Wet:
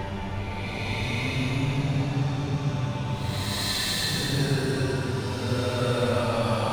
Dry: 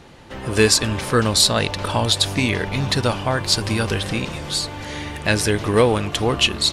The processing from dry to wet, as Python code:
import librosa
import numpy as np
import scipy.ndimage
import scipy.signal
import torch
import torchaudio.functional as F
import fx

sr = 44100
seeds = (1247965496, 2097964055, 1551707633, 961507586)

y = fx.self_delay(x, sr, depth_ms=0.095)
y = 10.0 ** (-15.5 / 20.0) * np.tanh(y / 10.0 ** (-15.5 / 20.0))
y = fx.paulstretch(y, sr, seeds[0], factor=15.0, window_s=0.1, from_s=2.67)
y = y + 10.0 ** (-13.0 / 20.0) * np.pad(y, (int(508 * sr / 1000.0), 0))[:len(y)]
y = y * 10.0 ** (-4.0 / 20.0)